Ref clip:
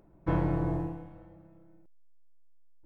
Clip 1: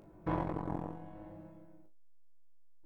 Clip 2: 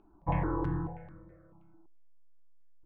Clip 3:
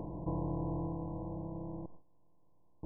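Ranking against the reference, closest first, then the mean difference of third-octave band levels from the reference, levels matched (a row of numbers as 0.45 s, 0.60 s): 2, 1, 3; 3.5 dB, 5.0 dB, 10.0 dB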